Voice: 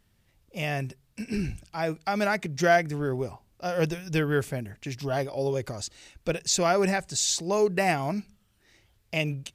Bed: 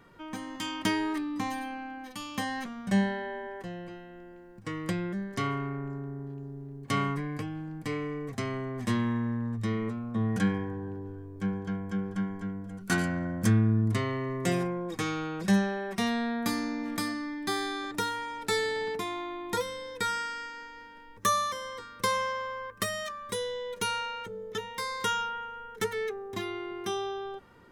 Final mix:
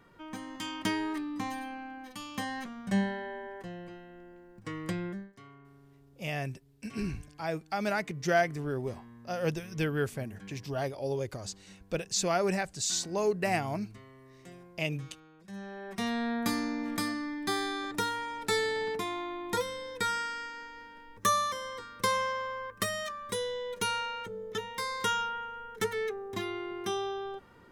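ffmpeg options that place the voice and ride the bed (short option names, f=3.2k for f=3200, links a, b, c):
-filter_complex "[0:a]adelay=5650,volume=-5dB[a];[1:a]volume=19dB,afade=t=out:st=5.09:d=0.24:silence=0.105925,afade=t=in:st=15.52:d=0.81:silence=0.0794328[b];[a][b]amix=inputs=2:normalize=0"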